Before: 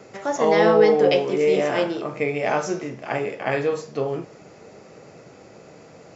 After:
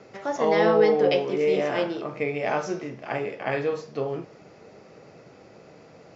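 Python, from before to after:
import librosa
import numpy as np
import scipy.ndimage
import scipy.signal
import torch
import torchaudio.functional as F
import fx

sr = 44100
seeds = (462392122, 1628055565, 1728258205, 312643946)

y = scipy.signal.sosfilt(scipy.signal.butter(4, 5900.0, 'lowpass', fs=sr, output='sos'), x)
y = F.gain(torch.from_numpy(y), -3.5).numpy()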